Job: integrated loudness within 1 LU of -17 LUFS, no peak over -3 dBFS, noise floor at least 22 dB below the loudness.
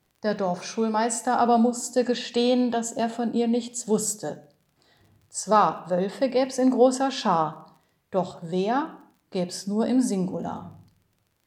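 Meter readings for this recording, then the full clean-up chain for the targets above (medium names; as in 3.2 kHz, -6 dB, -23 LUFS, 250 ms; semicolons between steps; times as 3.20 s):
tick rate 31 per s; loudness -24.5 LUFS; peak level -6.0 dBFS; loudness target -17.0 LUFS
-> de-click; trim +7.5 dB; peak limiter -3 dBFS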